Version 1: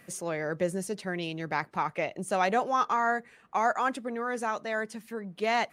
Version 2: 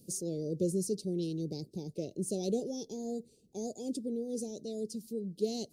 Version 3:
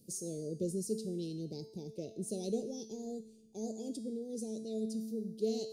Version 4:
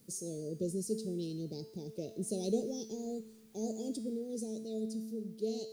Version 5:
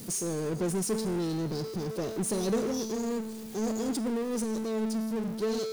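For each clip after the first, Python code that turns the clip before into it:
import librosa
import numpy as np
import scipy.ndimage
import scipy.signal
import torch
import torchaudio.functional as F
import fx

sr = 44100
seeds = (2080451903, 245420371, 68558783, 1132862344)

y1 = scipy.signal.sosfilt(scipy.signal.ellip(3, 1.0, 70, [420.0, 4600.0], 'bandstop', fs=sr, output='sos'), x)
y1 = y1 * 10.0 ** (2.0 / 20.0)
y2 = fx.comb_fb(y1, sr, f0_hz=220.0, decay_s=1.0, harmonics='all', damping=0.0, mix_pct=80)
y2 = y2 * 10.0 ** (8.5 / 20.0)
y3 = fx.quant_dither(y2, sr, seeds[0], bits=12, dither='triangular')
y3 = fx.rider(y3, sr, range_db=10, speed_s=2.0)
y4 = fx.power_curve(y3, sr, exponent=0.5)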